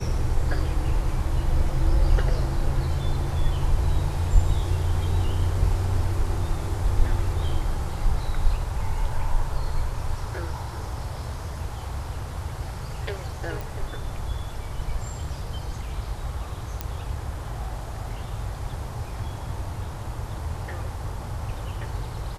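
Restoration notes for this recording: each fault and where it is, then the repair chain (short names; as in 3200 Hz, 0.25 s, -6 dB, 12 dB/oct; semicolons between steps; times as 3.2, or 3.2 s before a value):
13.61 pop
16.81 pop -13 dBFS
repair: de-click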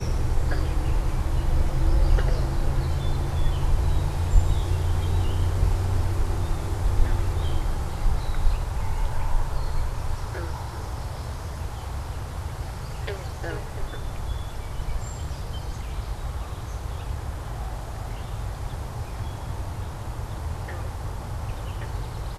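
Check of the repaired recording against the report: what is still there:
none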